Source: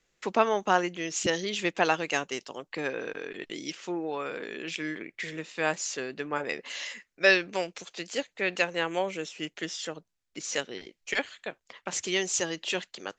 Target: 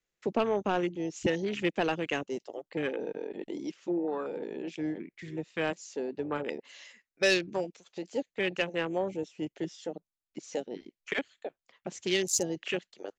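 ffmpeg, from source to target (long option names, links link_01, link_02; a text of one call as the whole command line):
ffmpeg -i in.wav -filter_complex "[0:a]afwtdn=0.0251,atempo=1,asoftclip=type=tanh:threshold=-11dB,acrossover=split=480|3000[link_01][link_02][link_03];[link_02]acompressor=threshold=-44dB:ratio=2[link_04];[link_01][link_04][link_03]amix=inputs=3:normalize=0,volume=3dB" out.wav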